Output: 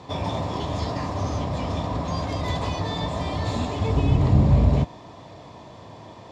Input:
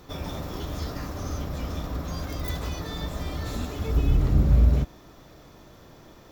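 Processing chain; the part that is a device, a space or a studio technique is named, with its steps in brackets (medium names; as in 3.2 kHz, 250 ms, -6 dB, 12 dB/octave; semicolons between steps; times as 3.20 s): car door speaker (cabinet simulation 100–7500 Hz, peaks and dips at 100 Hz +9 dB, 350 Hz -3 dB, 680 Hz +5 dB, 980 Hz +9 dB, 1.4 kHz -10 dB, 5.9 kHz -7 dB); trim +6 dB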